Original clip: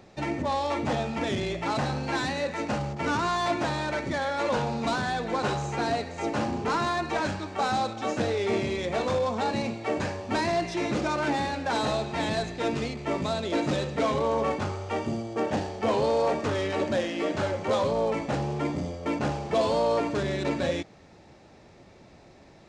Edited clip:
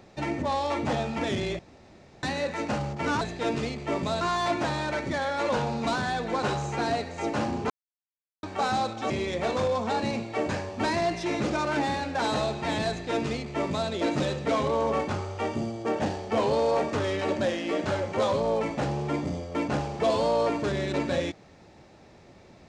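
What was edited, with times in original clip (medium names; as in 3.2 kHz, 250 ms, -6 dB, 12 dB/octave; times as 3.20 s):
1.59–2.23 s: room tone
6.70–7.43 s: mute
8.10–8.61 s: delete
12.40–13.40 s: copy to 3.21 s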